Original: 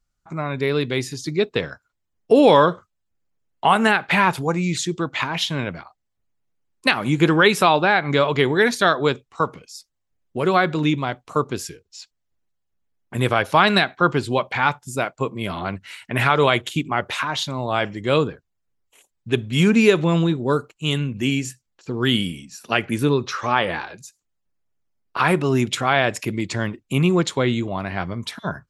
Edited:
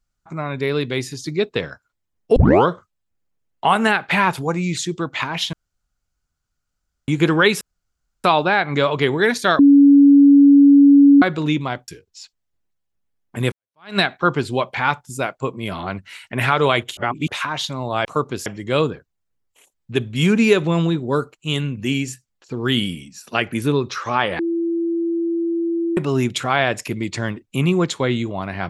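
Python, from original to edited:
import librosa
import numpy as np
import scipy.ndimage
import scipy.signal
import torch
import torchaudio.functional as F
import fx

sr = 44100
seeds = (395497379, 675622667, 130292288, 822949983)

y = fx.edit(x, sr, fx.tape_start(start_s=2.36, length_s=0.3),
    fx.room_tone_fill(start_s=5.53, length_s=1.55),
    fx.insert_room_tone(at_s=7.61, length_s=0.63),
    fx.bleep(start_s=8.96, length_s=1.63, hz=282.0, db=-6.0),
    fx.move(start_s=11.25, length_s=0.41, to_s=17.83),
    fx.fade_in_span(start_s=13.3, length_s=0.46, curve='exp'),
    fx.reverse_span(start_s=16.75, length_s=0.31),
    fx.bleep(start_s=23.76, length_s=1.58, hz=336.0, db=-18.0), tone=tone)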